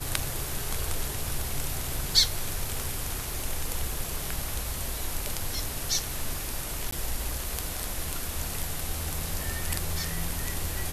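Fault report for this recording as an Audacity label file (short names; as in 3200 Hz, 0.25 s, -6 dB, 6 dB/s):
6.910000	6.920000	gap 14 ms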